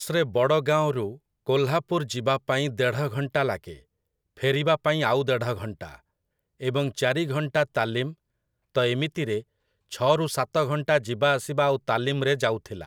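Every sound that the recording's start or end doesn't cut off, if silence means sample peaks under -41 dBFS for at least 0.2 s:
1.47–3.78
4.37–5.96
6.6–8.13
8.75–9.42

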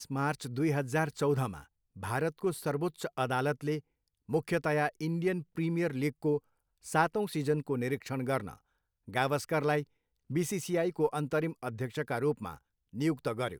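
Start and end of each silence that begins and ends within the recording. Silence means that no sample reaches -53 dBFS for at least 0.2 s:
1.65–1.96
3.8–4.29
6.39–6.84
8.58–9.08
9.84–10.3
12.58–12.93

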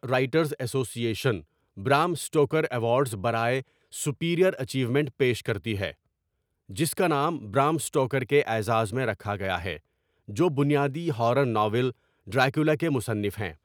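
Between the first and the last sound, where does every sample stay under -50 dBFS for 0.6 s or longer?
5.94–6.69

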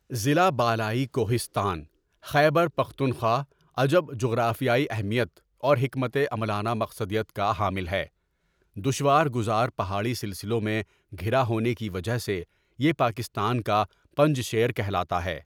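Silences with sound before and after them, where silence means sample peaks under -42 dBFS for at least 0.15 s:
1.85–2.24
3.44–3.77
5.37–5.63
8.06–8.76
10.83–11.12
12.44–12.79
13.86–14.17

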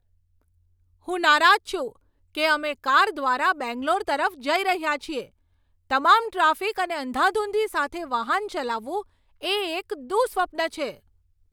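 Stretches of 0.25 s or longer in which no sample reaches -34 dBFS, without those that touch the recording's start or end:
1.9–2.35
5.23–5.9
9.01–9.43

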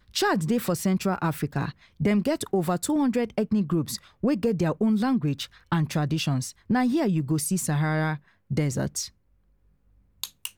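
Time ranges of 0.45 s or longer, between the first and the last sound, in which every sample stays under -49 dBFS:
9.1–10.23

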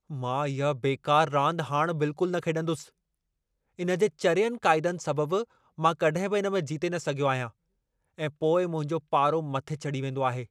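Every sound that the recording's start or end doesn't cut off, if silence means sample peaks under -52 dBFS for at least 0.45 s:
3.79–7.51

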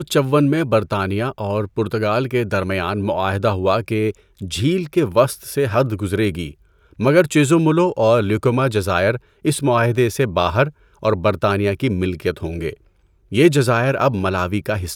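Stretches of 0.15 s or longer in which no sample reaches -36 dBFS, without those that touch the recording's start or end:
4.15–4.39
6.52–6.93
9.18–9.45
10.7–11.03
12.74–13.32

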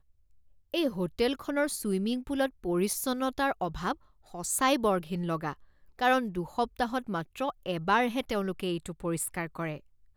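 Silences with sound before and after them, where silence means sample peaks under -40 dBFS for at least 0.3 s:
3.94–4.34
5.53–5.99

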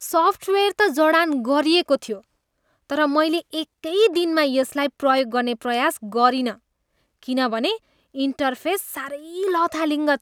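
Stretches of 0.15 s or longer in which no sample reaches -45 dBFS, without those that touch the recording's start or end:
2.23–2.9
3.65–3.84
6.57–7.23
7.78–8.14

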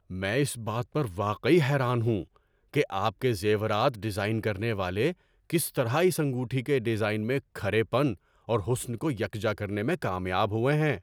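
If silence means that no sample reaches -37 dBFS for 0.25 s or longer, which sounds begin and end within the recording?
2.74–5.12
5.5–8.14

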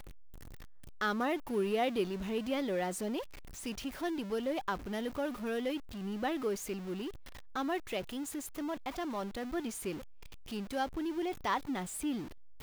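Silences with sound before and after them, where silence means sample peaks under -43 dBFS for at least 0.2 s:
3.23–3.57
7.1–7.55
10–10.48

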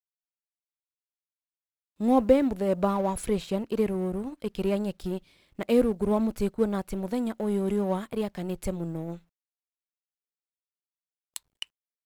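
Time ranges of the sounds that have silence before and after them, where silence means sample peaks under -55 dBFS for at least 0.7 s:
2–9.22

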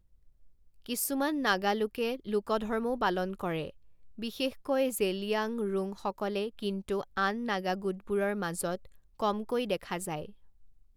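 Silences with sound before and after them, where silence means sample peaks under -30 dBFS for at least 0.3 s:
3.67–4.23
8.75–9.2

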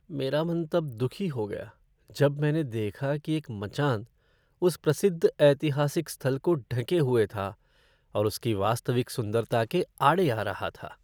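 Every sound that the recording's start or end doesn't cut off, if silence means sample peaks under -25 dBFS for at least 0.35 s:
2.2–3.96
4.62–7.49

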